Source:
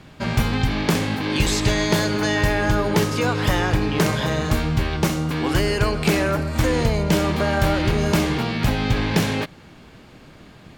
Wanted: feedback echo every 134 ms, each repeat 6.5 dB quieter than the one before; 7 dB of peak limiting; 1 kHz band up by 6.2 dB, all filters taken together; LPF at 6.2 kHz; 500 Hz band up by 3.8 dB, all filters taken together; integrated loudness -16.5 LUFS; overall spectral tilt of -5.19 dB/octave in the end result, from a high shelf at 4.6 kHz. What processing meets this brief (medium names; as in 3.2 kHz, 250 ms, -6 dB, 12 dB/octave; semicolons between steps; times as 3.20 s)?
low-pass 6.2 kHz; peaking EQ 500 Hz +3 dB; peaking EQ 1 kHz +6.5 dB; treble shelf 4.6 kHz +7 dB; peak limiter -10 dBFS; feedback delay 134 ms, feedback 47%, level -6.5 dB; trim +3 dB